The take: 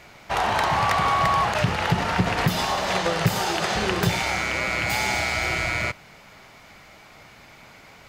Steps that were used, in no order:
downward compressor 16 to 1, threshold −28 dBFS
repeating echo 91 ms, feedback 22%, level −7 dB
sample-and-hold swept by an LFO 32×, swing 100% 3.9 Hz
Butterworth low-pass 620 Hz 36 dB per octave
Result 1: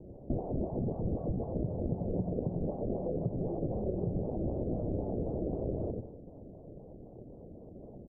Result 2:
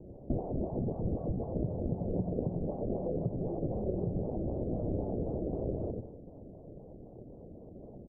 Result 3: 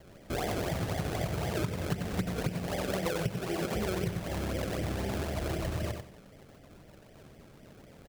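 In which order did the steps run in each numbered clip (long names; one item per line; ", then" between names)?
repeating echo, then sample-and-hold swept by an LFO, then downward compressor, then Butterworth low-pass
repeating echo, then downward compressor, then sample-and-hold swept by an LFO, then Butterworth low-pass
Butterworth low-pass, then sample-and-hold swept by an LFO, then repeating echo, then downward compressor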